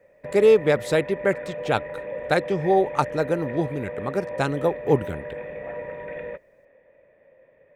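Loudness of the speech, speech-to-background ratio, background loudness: −23.0 LKFS, 11.0 dB, −34.0 LKFS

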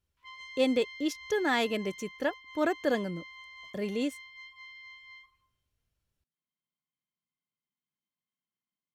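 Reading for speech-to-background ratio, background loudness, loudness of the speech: 15.5 dB, −46.5 LKFS, −31.0 LKFS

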